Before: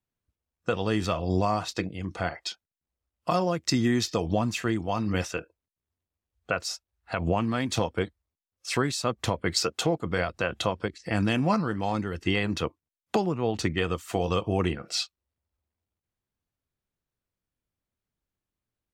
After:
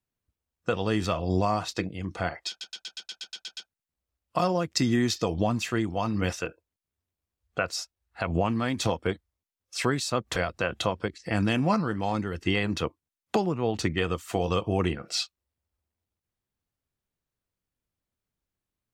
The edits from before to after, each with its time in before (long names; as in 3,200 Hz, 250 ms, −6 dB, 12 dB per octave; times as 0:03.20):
0:02.49: stutter 0.12 s, 10 plays
0:09.28–0:10.16: remove